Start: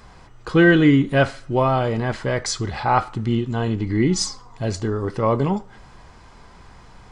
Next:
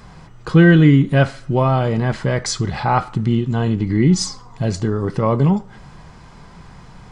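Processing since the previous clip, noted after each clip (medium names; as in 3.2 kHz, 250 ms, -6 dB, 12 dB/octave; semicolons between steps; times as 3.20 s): peaking EQ 160 Hz +10.5 dB 0.69 oct; in parallel at -3 dB: compression, threshold -20 dBFS, peak gain reduction 14 dB; on the sum: trim -2 dB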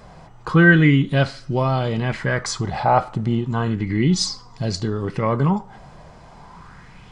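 sweeping bell 0.33 Hz 600–5000 Hz +11 dB; trim -4 dB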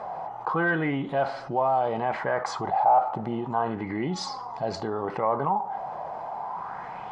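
saturation -3.5 dBFS, distortion -24 dB; band-pass filter 790 Hz, Q 3.9; level flattener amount 50%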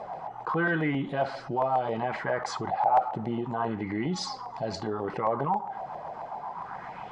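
LFO notch saw down 7.4 Hz 370–1600 Hz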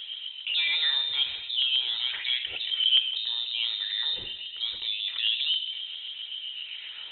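FDN reverb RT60 2.2 s, low-frequency decay 1×, high-frequency decay 0.45×, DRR 11 dB; frequency inversion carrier 3.9 kHz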